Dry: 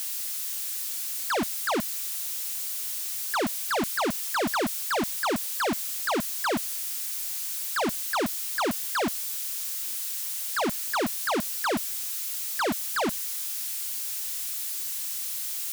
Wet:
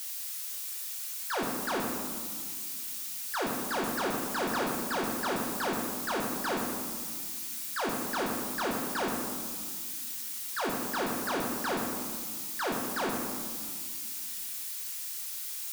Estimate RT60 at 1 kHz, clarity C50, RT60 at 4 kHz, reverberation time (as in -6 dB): 1.8 s, 2.0 dB, 0.90 s, 1.7 s